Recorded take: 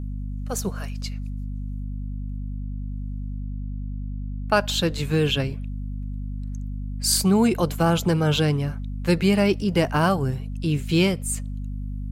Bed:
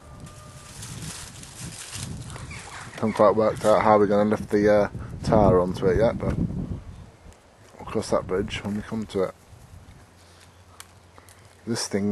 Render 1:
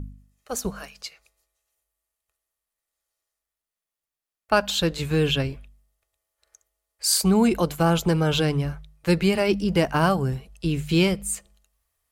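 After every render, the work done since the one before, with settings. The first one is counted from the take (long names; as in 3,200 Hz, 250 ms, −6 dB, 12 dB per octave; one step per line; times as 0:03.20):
hum removal 50 Hz, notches 5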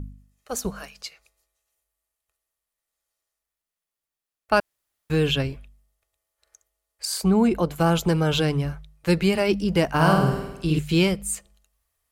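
0:04.60–0:05.10: fill with room tone
0:07.05–0:07.76: high-shelf EQ 2,500 Hz −9 dB
0:09.90–0:10.79: flutter between parallel walls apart 8.8 metres, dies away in 0.92 s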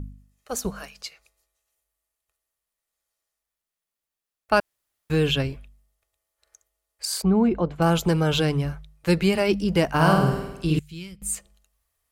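0:07.22–0:07.82: head-to-tape spacing loss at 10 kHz 25 dB
0:10.79–0:11.22: guitar amp tone stack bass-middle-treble 6-0-2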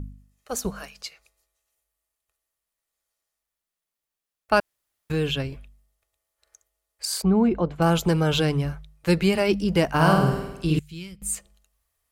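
0:05.12–0:05.52: clip gain −3.5 dB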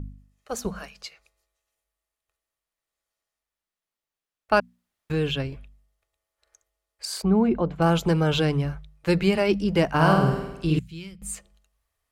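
high-shelf EQ 6,900 Hz −9.5 dB
mains-hum notches 60/120/180/240 Hz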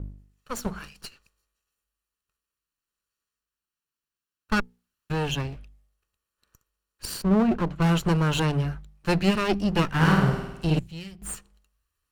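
lower of the sound and its delayed copy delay 0.71 ms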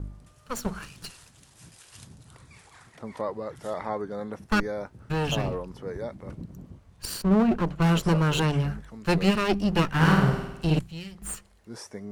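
mix in bed −14 dB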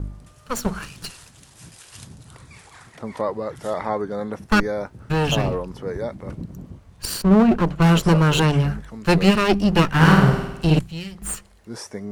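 level +6.5 dB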